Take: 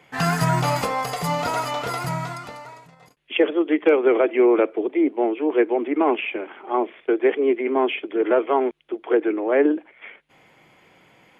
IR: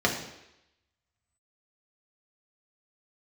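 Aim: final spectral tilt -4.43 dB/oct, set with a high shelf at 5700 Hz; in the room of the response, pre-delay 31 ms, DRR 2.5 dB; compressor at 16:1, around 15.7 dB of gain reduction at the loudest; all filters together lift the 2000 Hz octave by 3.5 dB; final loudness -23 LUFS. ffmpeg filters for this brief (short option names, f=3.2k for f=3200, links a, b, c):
-filter_complex "[0:a]equalizer=f=2k:t=o:g=3.5,highshelf=f=5.7k:g=6.5,acompressor=threshold=-28dB:ratio=16,asplit=2[a][b];[1:a]atrim=start_sample=2205,adelay=31[c];[b][c]afir=irnorm=-1:irlink=0,volume=-16dB[d];[a][d]amix=inputs=2:normalize=0,volume=7.5dB"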